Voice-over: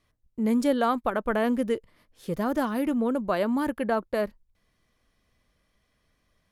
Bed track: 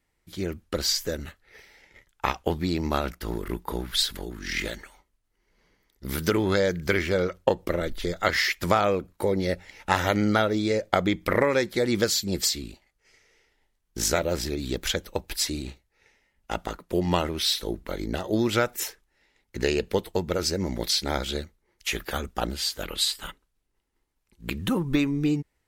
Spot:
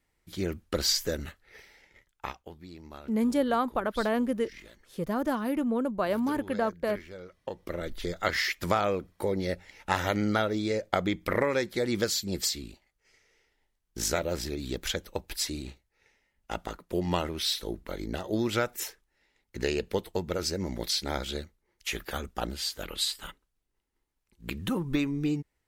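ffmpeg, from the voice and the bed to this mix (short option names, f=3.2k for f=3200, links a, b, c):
-filter_complex "[0:a]adelay=2700,volume=-2.5dB[a];[1:a]volume=14.5dB,afade=t=out:st=1.55:d=0.93:silence=0.112202,afade=t=in:st=7.4:d=0.59:silence=0.16788[b];[a][b]amix=inputs=2:normalize=0"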